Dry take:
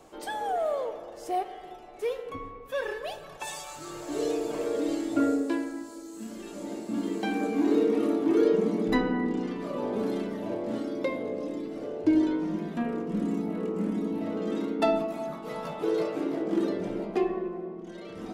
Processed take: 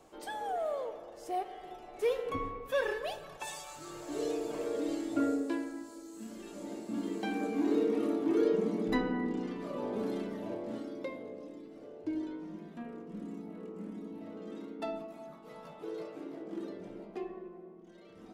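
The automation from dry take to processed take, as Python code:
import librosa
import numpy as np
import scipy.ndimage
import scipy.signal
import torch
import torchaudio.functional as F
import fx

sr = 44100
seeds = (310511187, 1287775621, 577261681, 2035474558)

y = fx.gain(x, sr, db=fx.line((1.32, -6.0), (2.41, 3.0), (3.61, -5.5), (10.4, -5.5), (11.57, -13.5)))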